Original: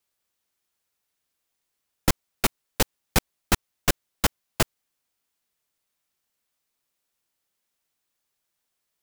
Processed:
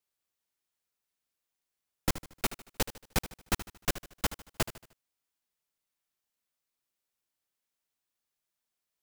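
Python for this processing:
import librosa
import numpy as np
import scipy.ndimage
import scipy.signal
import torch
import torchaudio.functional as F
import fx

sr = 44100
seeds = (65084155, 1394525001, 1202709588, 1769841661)

y = fx.echo_feedback(x, sr, ms=76, feedback_pct=42, wet_db=-14.0)
y = y * 10.0 ** (-8.0 / 20.0)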